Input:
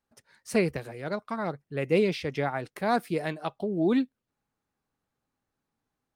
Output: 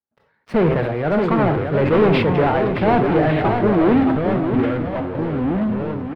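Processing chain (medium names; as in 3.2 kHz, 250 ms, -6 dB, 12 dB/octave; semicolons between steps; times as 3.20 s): high-pass 86 Hz 12 dB/octave; treble shelf 4.4 kHz -8.5 dB; de-hum 131 Hz, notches 27; waveshaping leveller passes 5; in parallel at -10 dB: bit crusher 4-bit; on the sum: ever faster or slower copies 613 ms, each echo -4 st, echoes 3, each echo -6 dB; distance through air 450 m; delay 623 ms -7.5 dB; on a send at -12 dB: reverberation RT60 0.55 s, pre-delay 17 ms; on the sum: decay stretcher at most 39 dB/s; trim -2 dB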